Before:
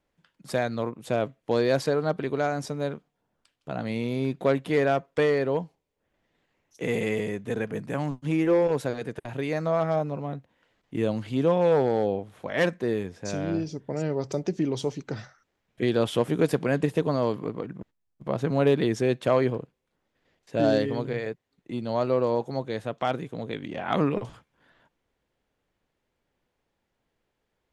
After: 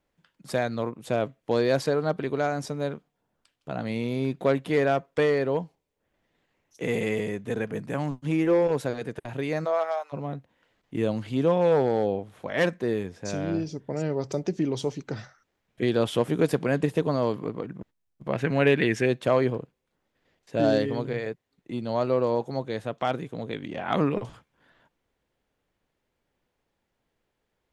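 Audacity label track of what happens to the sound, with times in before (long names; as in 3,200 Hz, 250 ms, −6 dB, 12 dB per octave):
9.640000	10.120000	high-pass filter 310 Hz → 950 Hz 24 dB per octave
18.320000	19.060000	flat-topped bell 2,100 Hz +10.5 dB 1.1 octaves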